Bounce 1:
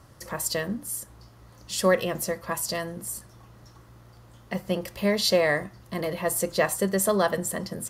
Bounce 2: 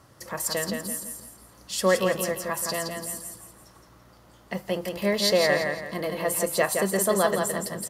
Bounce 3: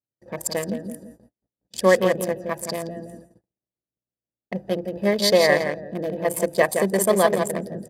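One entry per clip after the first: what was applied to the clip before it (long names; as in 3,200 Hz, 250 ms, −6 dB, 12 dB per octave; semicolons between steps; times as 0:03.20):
low-shelf EQ 92 Hz −11.5 dB; repeating echo 168 ms, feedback 36%, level −5 dB
adaptive Wiener filter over 41 samples; noise gate −49 dBFS, range −44 dB; notch comb filter 1,400 Hz; level +6 dB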